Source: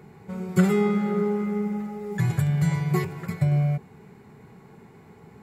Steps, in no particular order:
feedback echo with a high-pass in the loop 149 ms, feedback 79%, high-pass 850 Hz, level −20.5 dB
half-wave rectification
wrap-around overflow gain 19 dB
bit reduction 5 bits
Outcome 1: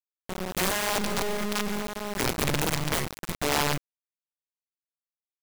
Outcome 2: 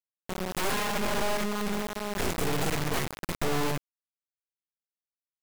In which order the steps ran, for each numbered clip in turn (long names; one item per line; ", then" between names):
half-wave rectification, then wrap-around overflow, then feedback echo with a high-pass in the loop, then bit reduction
feedback echo with a high-pass in the loop, then bit reduction, then wrap-around overflow, then half-wave rectification